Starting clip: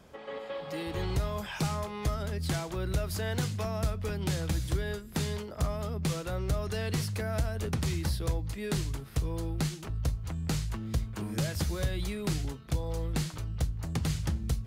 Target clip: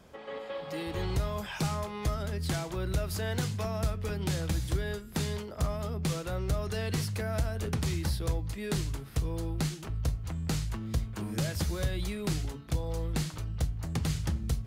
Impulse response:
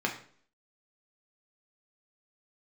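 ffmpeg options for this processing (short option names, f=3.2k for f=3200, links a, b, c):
-af "bandreject=f=142.1:t=h:w=4,bandreject=f=284.2:t=h:w=4,bandreject=f=426.3:t=h:w=4,bandreject=f=568.4:t=h:w=4,bandreject=f=710.5:t=h:w=4,bandreject=f=852.6:t=h:w=4,bandreject=f=994.7:t=h:w=4,bandreject=f=1.1368k:t=h:w=4,bandreject=f=1.2789k:t=h:w=4,bandreject=f=1.421k:t=h:w=4,bandreject=f=1.5631k:t=h:w=4,bandreject=f=1.7052k:t=h:w=4,bandreject=f=1.8473k:t=h:w=4,bandreject=f=1.9894k:t=h:w=4,bandreject=f=2.1315k:t=h:w=4,bandreject=f=2.2736k:t=h:w=4,bandreject=f=2.4157k:t=h:w=4,bandreject=f=2.5578k:t=h:w=4,bandreject=f=2.6999k:t=h:w=4,bandreject=f=2.842k:t=h:w=4,bandreject=f=2.9841k:t=h:w=4,bandreject=f=3.1262k:t=h:w=4,bandreject=f=3.2683k:t=h:w=4"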